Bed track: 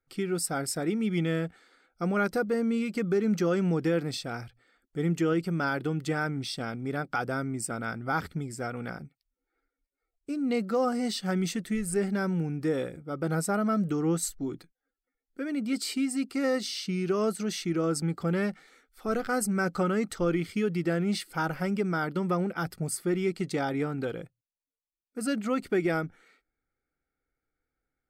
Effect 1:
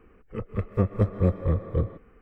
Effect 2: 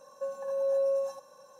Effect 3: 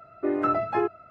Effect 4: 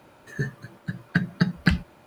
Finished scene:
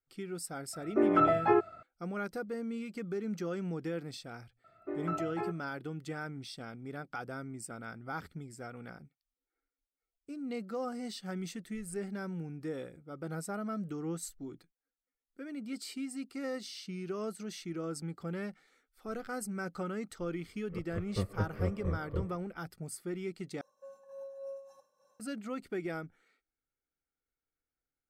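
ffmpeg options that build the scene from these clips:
ffmpeg -i bed.wav -i cue0.wav -i cue1.wav -i cue2.wav -filter_complex "[3:a]asplit=2[link_01][link_02];[0:a]volume=-10.5dB[link_03];[link_01]highshelf=frequency=3900:gain=-7[link_04];[2:a]tremolo=f=3.4:d=0.61[link_05];[link_03]asplit=2[link_06][link_07];[link_06]atrim=end=23.614[link_08];[link_05]atrim=end=1.59,asetpts=PTS-STARTPTS,volume=-14dB[link_09];[link_07]atrim=start=25.196[link_10];[link_04]atrim=end=1.1,asetpts=PTS-STARTPTS,volume=-0.5dB,afade=type=in:duration=0.004:curve=hsin,afade=type=out:start_time=1.096:duration=0.004:curve=hsin,adelay=730[link_11];[link_02]atrim=end=1.1,asetpts=PTS-STARTPTS,volume=-12.5dB,afade=type=in:duration=0.004:curve=hsin,afade=type=out:start_time=1.096:duration=0.004:curve=hsin,adelay=4640[link_12];[1:a]atrim=end=2.21,asetpts=PTS-STARTPTS,volume=-10.5dB,afade=type=in:duration=0.004:curve=hsin,afade=type=out:start_time=2.206:duration=0.004:curve=hsin,adelay=20390[link_13];[link_08][link_09]acrossfade=duration=0.004:curve1=hsin:curve2=hsin[link_14];[link_14][link_10]acrossfade=duration=0.004:curve1=hsin:curve2=hsin[link_15];[link_15][link_11][link_12][link_13]amix=inputs=4:normalize=0" out.wav

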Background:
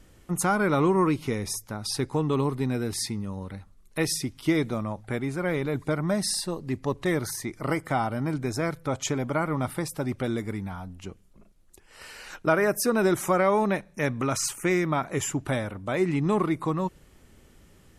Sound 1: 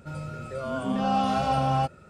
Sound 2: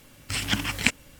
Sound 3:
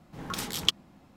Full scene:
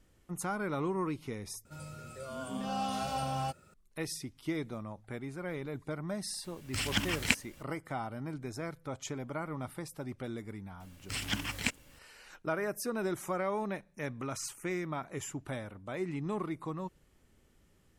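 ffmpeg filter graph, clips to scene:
ffmpeg -i bed.wav -i cue0.wav -i cue1.wav -filter_complex "[2:a]asplit=2[link_01][link_02];[0:a]volume=-11.5dB[link_03];[1:a]aemphasis=mode=production:type=75fm[link_04];[link_02]acontrast=54[link_05];[link_03]asplit=2[link_06][link_07];[link_06]atrim=end=1.654[link_08];[link_04]atrim=end=2.09,asetpts=PTS-STARTPTS,volume=-10dB[link_09];[link_07]atrim=start=3.736[link_10];[link_01]atrim=end=1.19,asetpts=PTS-STARTPTS,volume=-5.5dB,afade=type=in:duration=0.004:curve=hsin,afade=type=out:start_time=1.186:duration=0.004:curve=hsin,adelay=6440[link_11];[link_05]atrim=end=1.19,asetpts=PTS-STARTPTS,volume=-14dB,afade=type=in:duration=0.004:curve=hsin,afade=type=out:start_time=1.186:duration=0.004:curve=hsin,adelay=10800[link_12];[link_08][link_09]acrossfade=duration=0.004:curve1=hsin:curve2=hsin[link_13];[link_13][link_10]acrossfade=duration=0.004:curve1=hsin:curve2=hsin[link_14];[link_14][link_11][link_12]amix=inputs=3:normalize=0" out.wav

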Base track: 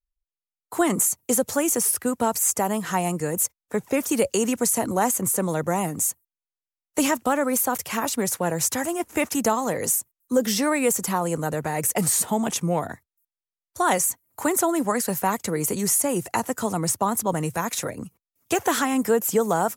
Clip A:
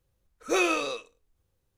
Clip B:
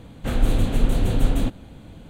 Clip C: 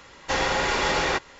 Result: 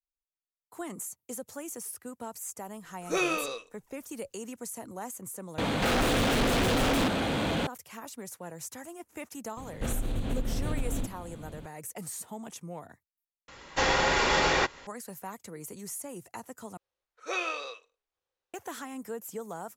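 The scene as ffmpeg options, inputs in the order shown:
ffmpeg -i bed.wav -i cue0.wav -i cue1.wav -i cue2.wav -filter_complex "[1:a]asplit=2[link_01][link_02];[2:a]asplit=2[link_03][link_04];[0:a]volume=-17.5dB[link_05];[link_03]asplit=2[link_06][link_07];[link_07]highpass=frequency=720:poles=1,volume=48dB,asoftclip=type=tanh:threshold=-5.5dB[link_08];[link_06][link_08]amix=inputs=2:normalize=0,lowpass=frequency=3600:poles=1,volume=-6dB[link_09];[link_04]acompressor=threshold=-24dB:ratio=6:attack=3.2:release=140:knee=1:detection=peak[link_10];[link_02]acrossover=split=450 6200:gain=0.0631 1 0.141[link_11][link_12][link_13];[link_11][link_12][link_13]amix=inputs=3:normalize=0[link_14];[link_05]asplit=4[link_15][link_16][link_17][link_18];[link_15]atrim=end=5.584[link_19];[link_09]atrim=end=2.09,asetpts=PTS-STARTPTS,volume=-13dB[link_20];[link_16]atrim=start=7.666:end=13.484[link_21];[3:a]atrim=end=1.39,asetpts=PTS-STARTPTS,volume=-1dB[link_22];[link_17]atrim=start=14.866:end=16.774[link_23];[link_14]atrim=end=1.77,asetpts=PTS-STARTPTS,volume=-5dB[link_24];[link_18]atrim=start=18.536[link_25];[link_01]atrim=end=1.77,asetpts=PTS-STARTPTS,volume=-3.5dB,afade=type=in:duration=0.004:curve=hsin,afade=type=out:start_time=1.766:duration=0.004:curve=hsin,adelay=2610[link_26];[link_10]atrim=end=2.09,asetpts=PTS-STARTPTS,volume=-2.5dB,afade=type=in:duration=0.004:curve=hsin,afade=type=out:start_time=2.086:duration=0.004:curve=hsin,adelay=9570[link_27];[link_19][link_20]acrossfade=duration=0.004:curve1=hsin:curve2=hsin[link_28];[link_28][link_21]acrossfade=duration=0.004:curve1=hsin:curve2=hsin[link_29];[link_29][link_22]acrossfade=duration=0.004:curve1=hsin:curve2=hsin[link_30];[link_30][link_23]acrossfade=duration=0.004:curve1=hsin:curve2=hsin[link_31];[link_31][link_24]acrossfade=duration=0.004:curve1=hsin:curve2=hsin[link_32];[link_32][link_25]acrossfade=duration=0.004:curve1=hsin:curve2=hsin[link_33];[link_33][link_26][link_27]amix=inputs=3:normalize=0" out.wav

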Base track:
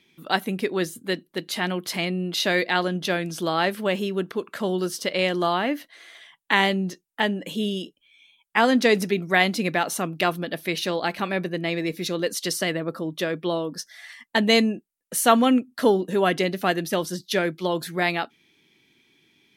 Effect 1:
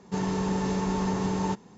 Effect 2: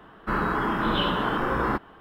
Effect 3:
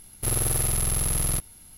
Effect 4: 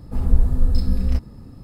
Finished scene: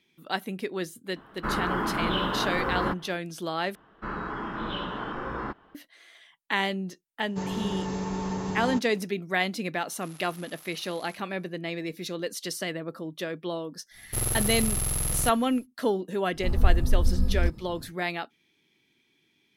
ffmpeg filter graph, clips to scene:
ffmpeg -i bed.wav -i cue0.wav -i cue1.wav -i cue2.wav -i cue3.wav -filter_complex "[2:a]asplit=2[link_01][link_02];[3:a]asplit=2[link_03][link_04];[0:a]volume=-7dB[link_05];[link_02]lowpass=frequency=7000:width=0.5412,lowpass=frequency=7000:width=1.3066[link_06];[1:a]bandreject=frequency=230:width=12[link_07];[link_03]highpass=750,lowpass=6900[link_08];[link_05]asplit=2[link_09][link_10];[link_09]atrim=end=3.754[link_11];[link_06]atrim=end=2,asetpts=PTS-STARTPTS,volume=-8.5dB[link_12];[link_10]atrim=start=5.746[link_13];[link_01]atrim=end=2,asetpts=PTS-STARTPTS,volume=-3dB,afade=type=in:duration=0.004:curve=hsin,afade=type=out:start_time=1.996:duration=0.004:curve=hsin,adelay=1160[link_14];[link_07]atrim=end=1.77,asetpts=PTS-STARTPTS,volume=-3.5dB,afade=type=in:duration=0.004:curve=hsin,afade=type=out:start_time=1.766:duration=0.004:curve=hsin,adelay=7240[link_15];[link_08]atrim=end=1.77,asetpts=PTS-STARTPTS,volume=-16.5dB,afade=type=in:duration=0.004:curve=hsin,afade=type=out:start_time=1.766:duration=0.004:curve=hsin,adelay=431298S[link_16];[link_04]atrim=end=1.77,asetpts=PTS-STARTPTS,volume=-3dB,afade=type=in:duration=0.1,afade=type=out:start_time=1.67:duration=0.1,adelay=13900[link_17];[4:a]atrim=end=1.63,asetpts=PTS-STARTPTS,volume=-4.5dB,afade=type=in:duration=0.1,afade=type=out:start_time=1.53:duration=0.1,adelay=16310[link_18];[link_11][link_12]acrossfade=duration=0.004:curve1=hsin:curve2=hsin[link_19];[link_19][link_13]acrossfade=duration=0.004:curve1=hsin:curve2=hsin[link_20];[link_20][link_14][link_15][link_16][link_17][link_18]amix=inputs=6:normalize=0" out.wav

